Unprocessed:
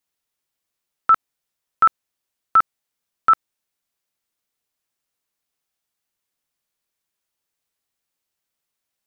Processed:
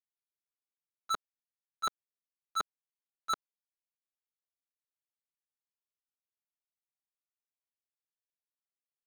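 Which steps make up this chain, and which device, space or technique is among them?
walkie-talkie (band-pass filter 400–2,400 Hz; hard clipping −17.5 dBFS, distortion −10 dB; noise gate −19 dBFS, range −29 dB)
comb filter 4.9 ms, depth 60%
level +3.5 dB

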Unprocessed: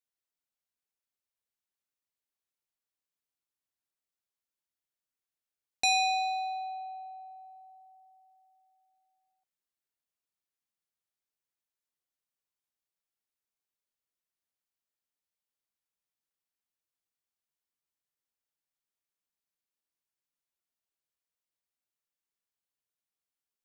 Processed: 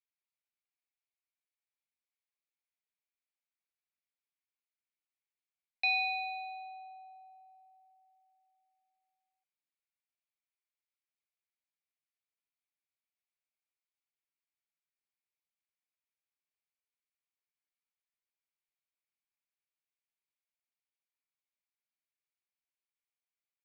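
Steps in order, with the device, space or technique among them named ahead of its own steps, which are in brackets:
musical greeting card (downsampling to 11,025 Hz; high-pass filter 590 Hz 24 dB per octave; parametric band 2,300 Hz +11 dB 0.46 octaves)
level −8.5 dB

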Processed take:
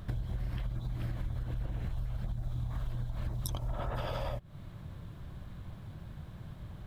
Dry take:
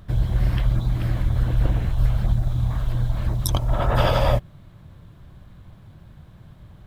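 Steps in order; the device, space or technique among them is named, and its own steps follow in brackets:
serial compression, leveller first (downward compressor 3 to 1, threshold −22 dBFS, peak gain reduction 7.5 dB; downward compressor 5 to 1, threshold −33 dBFS, peak gain reduction 12.5 dB)

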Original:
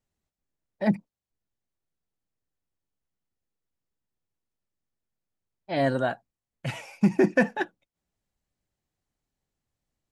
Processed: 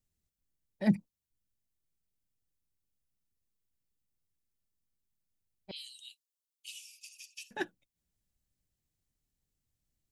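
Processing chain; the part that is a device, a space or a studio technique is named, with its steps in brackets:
smiley-face EQ (low-shelf EQ 140 Hz +5.5 dB; parametric band 850 Hz −7.5 dB 2.2 octaves; high-shelf EQ 6,800 Hz +8 dB)
0:05.71–0:07.51: Butterworth high-pass 2,700 Hz 72 dB per octave
level −3 dB

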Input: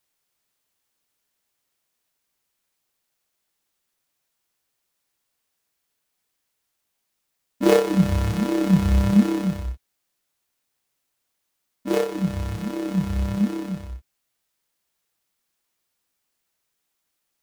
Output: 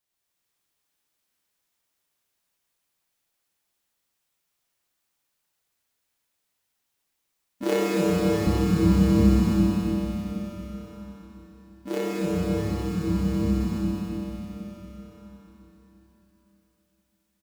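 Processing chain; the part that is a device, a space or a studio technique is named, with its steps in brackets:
cave (single-tap delay 276 ms −8 dB; convolution reverb RT60 4.6 s, pre-delay 52 ms, DRR −5.5 dB)
0:07.63–0:08.47: high-pass filter 220 Hz 6 dB per octave
level −8 dB

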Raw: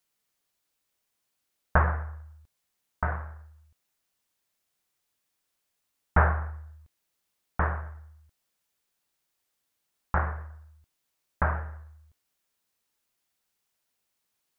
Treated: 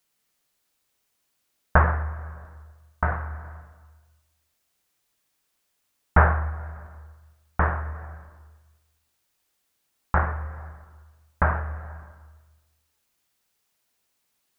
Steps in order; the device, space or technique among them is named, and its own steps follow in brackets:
compressed reverb return (on a send at −6.5 dB: convolution reverb RT60 1.3 s, pre-delay 88 ms + downward compressor 4 to 1, threshold −33 dBFS, peak gain reduction 15 dB)
on the sum: level +4.5 dB

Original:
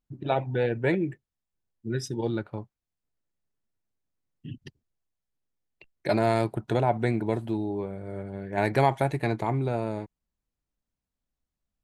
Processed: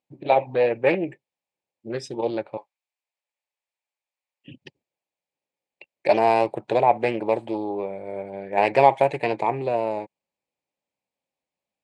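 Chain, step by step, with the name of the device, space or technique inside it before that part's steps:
0:02.57–0:04.48: high-pass filter 930 Hz 12 dB per octave
full-range speaker at full volume (highs frequency-modulated by the lows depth 0.35 ms; loudspeaker in its box 220–8,500 Hz, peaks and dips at 230 Hz −4 dB, 550 Hz +9 dB, 840 Hz +8 dB, 1,400 Hz −8 dB, 2,400 Hz +9 dB, 6,000 Hz −6 dB)
level +2 dB

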